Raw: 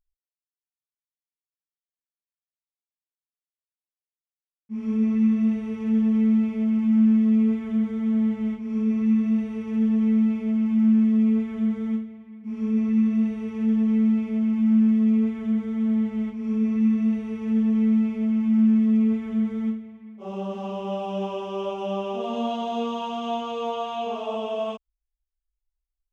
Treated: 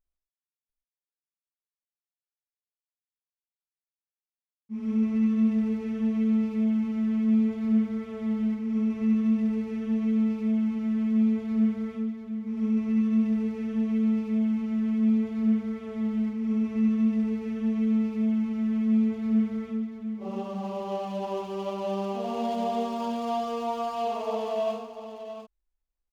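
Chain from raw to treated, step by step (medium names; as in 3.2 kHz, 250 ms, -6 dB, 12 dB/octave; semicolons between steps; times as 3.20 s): median filter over 15 samples; multi-tap echo 70/76/142/695 ms -6.5/-18/-11.5/-8.5 dB; trim -2.5 dB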